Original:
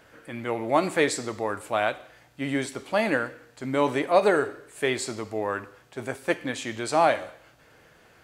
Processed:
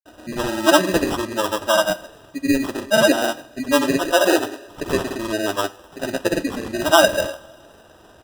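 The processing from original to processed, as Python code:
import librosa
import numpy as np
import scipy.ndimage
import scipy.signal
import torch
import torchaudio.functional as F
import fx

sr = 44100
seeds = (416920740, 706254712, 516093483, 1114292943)

y = x + 0.88 * np.pad(x, (int(3.3 * sr / 1000.0), 0))[:len(x)]
y = fx.spec_gate(y, sr, threshold_db=-20, keep='strong')
y = fx.sample_hold(y, sr, seeds[0], rate_hz=2200.0, jitter_pct=0)
y = fx.granulator(y, sr, seeds[1], grain_ms=100.0, per_s=20.0, spray_ms=100.0, spread_st=0)
y = fx.rev_double_slope(y, sr, seeds[2], early_s=0.38, late_s=3.4, knee_db=-22, drr_db=13.5)
y = y * librosa.db_to_amplitude(6.0)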